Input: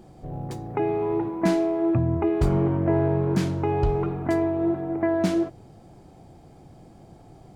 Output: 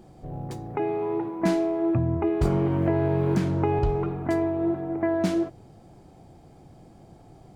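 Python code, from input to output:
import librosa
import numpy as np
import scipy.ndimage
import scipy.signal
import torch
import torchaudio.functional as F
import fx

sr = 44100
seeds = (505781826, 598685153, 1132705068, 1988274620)

y = fx.highpass(x, sr, hz=180.0, slope=6, at=(0.76, 1.4))
y = fx.band_squash(y, sr, depth_pct=100, at=(2.45, 3.79))
y = y * librosa.db_to_amplitude(-1.5)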